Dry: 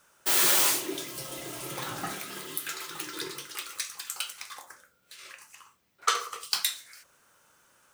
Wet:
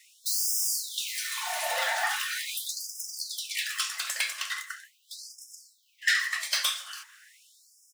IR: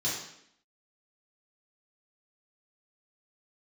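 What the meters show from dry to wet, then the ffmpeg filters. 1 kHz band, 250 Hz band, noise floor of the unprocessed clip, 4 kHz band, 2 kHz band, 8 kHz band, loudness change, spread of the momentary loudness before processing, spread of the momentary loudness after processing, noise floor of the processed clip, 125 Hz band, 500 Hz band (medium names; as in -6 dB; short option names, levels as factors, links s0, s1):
-1.0 dB, under -40 dB, -68 dBFS, +2.0 dB, +6.5 dB, 0.0 dB, -0.5 dB, 21 LU, 18 LU, -66 dBFS, under -40 dB, -2.5 dB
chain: -filter_complex "[0:a]afftfilt=real='real(if(between(b,1,1008),(2*floor((b-1)/48)+1)*48-b,b),0)':imag='imag(if(between(b,1,1008),(2*floor((b-1)/48)+1)*48-b,b),0)*if(between(b,1,1008),-1,1)':win_size=2048:overlap=0.75,asplit=2[s0][s1];[s1]acompressor=threshold=0.02:ratio=10,volume=0.794[s2];[s0][s2]amix=inputs=2:normalize=0,asplit=2[s3][s4];[s4]highpass=f=720:p=1,volume=10,asoftclip=type=tanh:threshold=0.531[s5];[s3][s5]amix=inputs=2:normalize=0,lowpass=f=4800:p=1,volume=0.501,highpass=360,lowshelf=f=500:g=5.5,asplit=2[s6][s7];[s7]adelay=224,lowpass=f=2300:p=1,volume=0.0891,asplit=2[s8][s9];[s9]adelay=224,lowpass=f=2300:p=1,volume=0.39,asplit=2[s10][s11];[s11]adelay=224,lowpass=f=2300:p=1,volume=0.39[s12];[s8][s10][s12]amix=inputs=3:normalize=0[s13];[s6][s13]amix=inputs=2:normalize=0,afftfilt=real='re*gte(b*sr/1024,500*pow(5000/500,0.5+0.5*sin(2*PI*0.41*pts/sr)))':imag='im*gte(b*sr/1024,500*pow(5000/500,0.5+0.5*sin(2*PI*0.41*pts/sr)))':win_size=1024:overlap=0.75,volume=0.422"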